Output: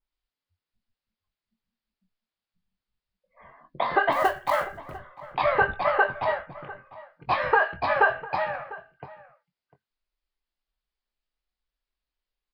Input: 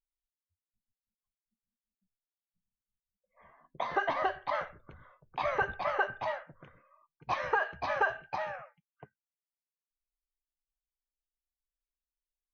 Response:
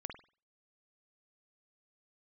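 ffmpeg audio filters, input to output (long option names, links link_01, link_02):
-filter_complex "[0:a]aresample=11025,aresample=44100,asplit=3[link_01][link_02][link_03];[link_01]afade=type=out:start_time=4.11:duration=0.02[link_04];[link_02]acrusher=bits=5:mode=log:mix=0:aa=0.000001,afade=type=in:start_time=4.11:duration=0.02,afade=type=out:start_time=4.96:duration=0.02[link_05];[link_03]afade=type=in:start_time=4.96:duration=0.02[link_06];[link_04][link_05][link_06]amix=inputs=3:normalize=0,asplit=2[link_07][link_08];[link_08]adelay=22,volume=-9.5dB[link_09];[link_07][link_09]amix=inputs=2:normalize=0,asplit=2[link_10][link_11];[link_11]adelay=699.7,volume=-18dB,highshelf=frequency=4000:gain=-15.7[link_12];[link_10][link_12]amix=inputs=2:normalize=0,adynamicequalizer=threshold=0.00891:dfrequency=2300:dqfactor=0.7:tfrequency=2300:tqfactor=0.7:attack=5:release=100:ratio=0.375:range=2:mode=cutabove:tftype=highshelf,volume=8dB"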